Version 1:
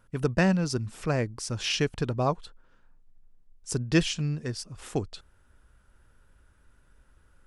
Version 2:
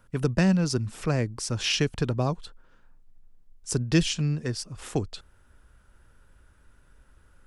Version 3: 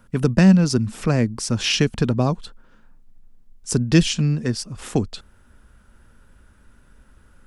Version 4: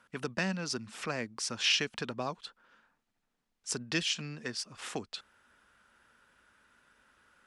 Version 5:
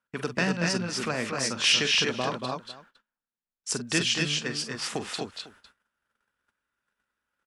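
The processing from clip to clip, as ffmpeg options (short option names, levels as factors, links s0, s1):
-filter_complex "[0:a]acrossover=split=310|3000[s0][s1][s2];[s1]acompressor=threshold=0.0316:ratio=6[s3];[s0][s3][s2]amix=inputs=3:normalize=0,volume=1.41"
-af "equalizer=f=220:w=3.1:g=8.5,volume=1.78"
-filter_complex "[0:a]asplit=2[s0][s1];[s1]acompressor=threshold=0.0562:ratio=6,volume=1.12[s2];[s0][s2]amix=inputs=2:normalize=0,bandpass=f=2400:t=q:w=0.5:csg=0,volume=0.376"
-af "aecho=1:1:41|46|232|255|501:0.133|0.299|0.473|0.668|0.112,agate=range=0.0562:threshold=0.00112:ratio=16:detection=peak,volume=1.78"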